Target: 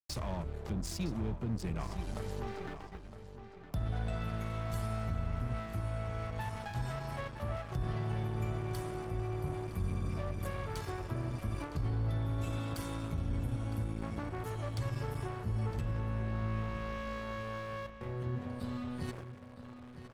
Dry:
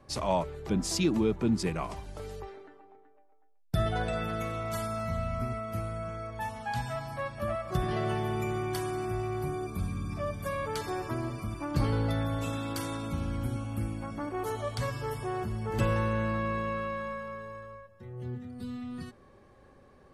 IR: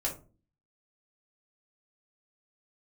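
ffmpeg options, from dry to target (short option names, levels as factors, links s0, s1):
-filter_complex "[0:a]agate=range=0.251:threshold=0.00224:ratio=16:detection=peak,acrossover=split=140[s0][s1];[s1]acompressor=threshold=0.00562:ratio=6[s2];[s0][s2]amix=inputs=2:normalize=0,alimiter=level_in=2.11:limit=0.0631:level=0:latency=1:release=51,volume=0.473,areverse,acompressor=mode=upward:threshold=0.02:ratio=2.5,areverse,aeval=exprs='sgn(val(0))*max(abs(val(0))-0.00473,0)':c=same,asplit=2[s3][s4];[s4]adelay=961,lowpass=f=4600:p=1,volume=0.282,asplit=2[s5][s6];[s6]adelay=961,lowpass=f=4600:p=1,volume=0.34,asplit=2[s7][s8];[s8]adelay=961,lowpass=f=4600:p=1,volume=0.34,asplit=2[s9][s10];[s10]adelay=961,lowpass=f=4600:p=1,volume=0.34[s11];[s3][s5][s7][s9][s11]amix=inputs=5:normalize=0,volume=1.78"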